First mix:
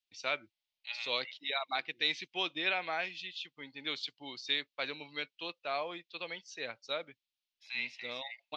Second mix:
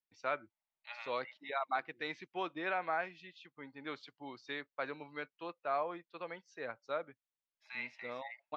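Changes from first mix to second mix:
second voice +4.0 dB; master: add resonant high shelf 2100 Hz -13.5 dB, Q 1.5

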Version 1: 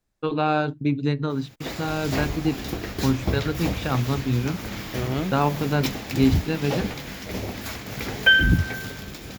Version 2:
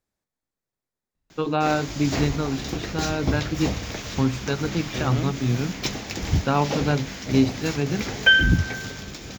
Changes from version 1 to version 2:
first voice: entry +1.15 s; second voice -3.0 dB; background: add resonant high shelf 7900 Hz -7 dB, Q 3

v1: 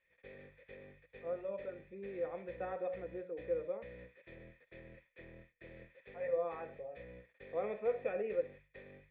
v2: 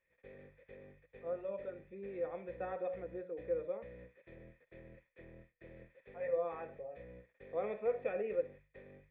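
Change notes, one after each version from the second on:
background: add high shelf 2100 Hz -10.5 dB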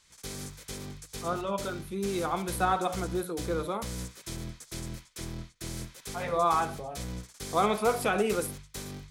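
master: remove vocal tract filter e

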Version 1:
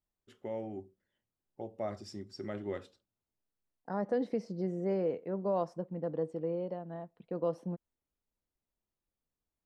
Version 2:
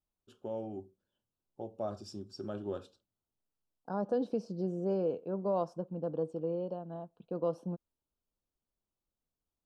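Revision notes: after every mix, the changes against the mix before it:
master: add Butterworth band-stop 2000 Hz, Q 2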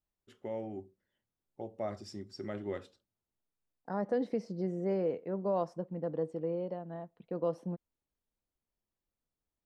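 master: remove Butterworth band-stop 2000 Hz, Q 2

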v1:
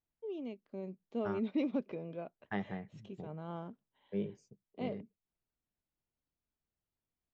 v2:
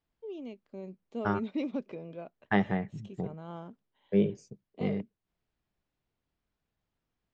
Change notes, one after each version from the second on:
first voice: remove air absorption 99 m; second voice +11.5 dB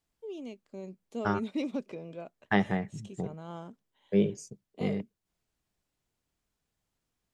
master: remove air absorption 170 m

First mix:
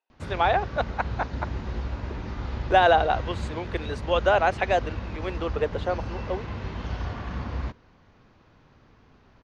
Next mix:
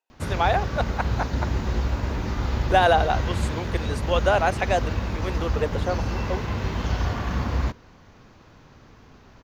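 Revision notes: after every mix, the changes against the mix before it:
background +6.5 dB; master: remove LPF 4600 Hz 12 dB/oct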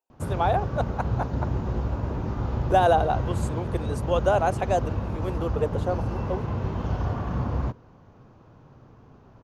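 background: add tone controls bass -6 dB, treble -13 dB; master: add ten-band EQ 125 Hz +9 dB, 2000 Hz -11 dB, 4000 Hz -6 dB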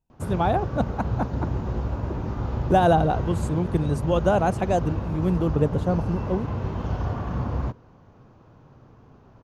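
speech: remove HPF 400 Hz 24 dB/oct

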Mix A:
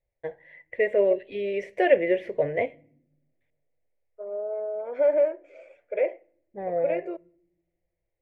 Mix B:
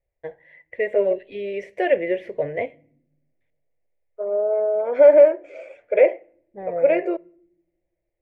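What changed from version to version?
second voice +10.0 dB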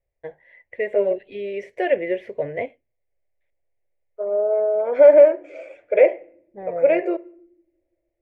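first voice: send off; second voice: send +7.5 dB

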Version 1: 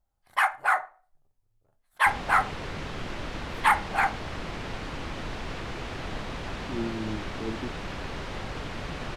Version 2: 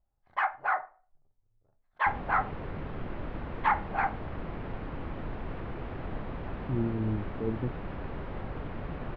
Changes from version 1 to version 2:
speech: remove fixed phaser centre 530 Hz, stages 6; second sound: add air absorption 130 m; master: add tape spacing loss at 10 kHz 41 dB

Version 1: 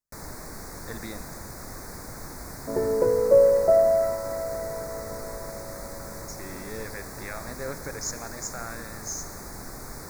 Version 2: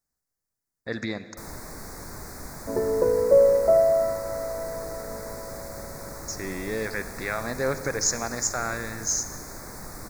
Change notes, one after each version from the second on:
speech +8.5 dB; first sound: entry +1.25 s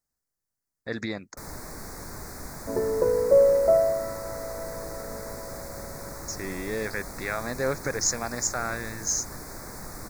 reverb: off

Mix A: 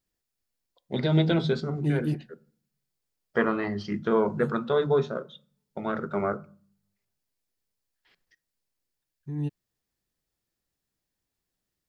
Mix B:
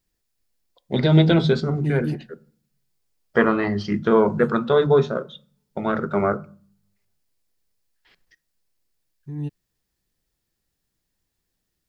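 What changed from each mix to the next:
first voice +6.5 dB; master: add low shelf 66 Hz +7 dB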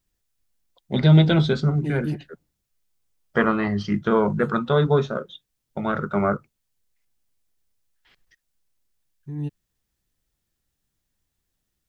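reverb: off

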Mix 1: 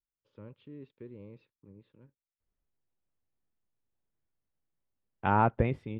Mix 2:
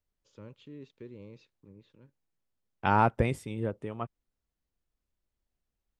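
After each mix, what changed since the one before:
second voice: entry -2.40 s; master: remove air absorption 360 m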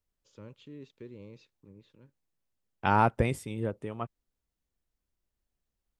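master: add high shelf 6600 Hz +6.5 dB

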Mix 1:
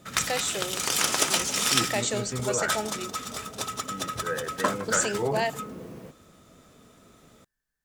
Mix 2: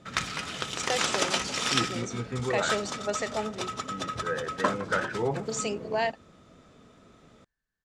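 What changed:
first voice: entry +0.60 s; master: add air absorption 93 m

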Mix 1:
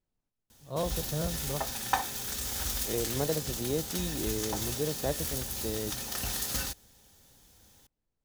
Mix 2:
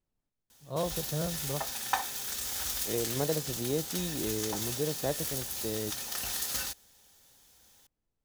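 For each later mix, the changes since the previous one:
background: add low shelf 400 Hz -11 dB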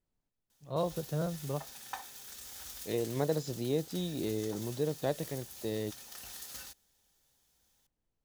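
background -12.0 dB

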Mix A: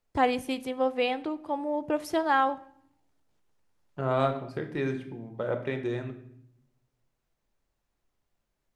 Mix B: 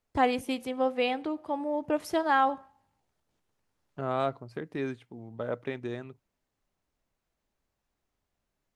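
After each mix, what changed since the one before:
reverb: off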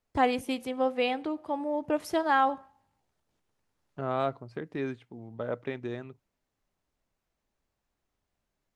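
second voice: add air absorption 51 m

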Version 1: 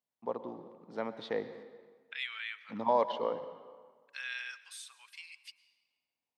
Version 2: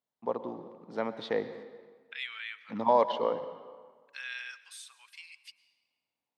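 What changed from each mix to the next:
first voice +4.0 dB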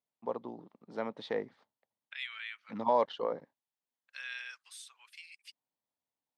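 reverb: off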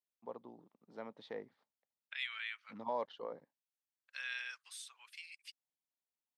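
first voice -10.5 dB

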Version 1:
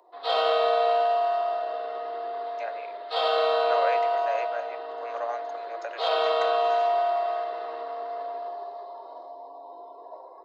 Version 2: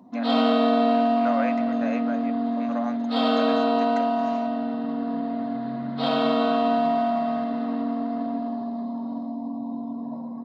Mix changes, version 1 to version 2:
speech: entry -2.45 s; master: remove steep high-pass 350 Hz 96 dB/oct

